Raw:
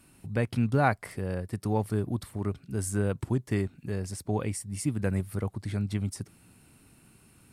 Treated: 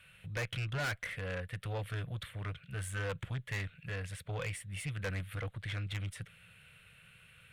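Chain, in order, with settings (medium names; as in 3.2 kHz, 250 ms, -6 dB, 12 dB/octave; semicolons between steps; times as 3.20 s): FFT filter 170 Hz 0 dB, 300 Hz -29 dB, 500 Hz +5 dB, 860 Hz -8 dB, 1.5 kHz +11 dB, 3.4 kHz +14 dB, 5 kHz -9 dB, 10 kHz -5 dB; valve stage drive 29 dB, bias 0.25; trim -3.5 dB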